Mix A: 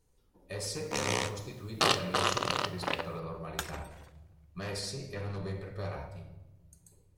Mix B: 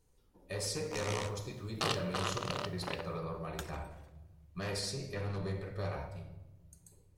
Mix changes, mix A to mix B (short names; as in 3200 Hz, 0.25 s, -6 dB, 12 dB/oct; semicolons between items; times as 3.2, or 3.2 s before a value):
first sound -8.0 dB; second sound -8.5 dB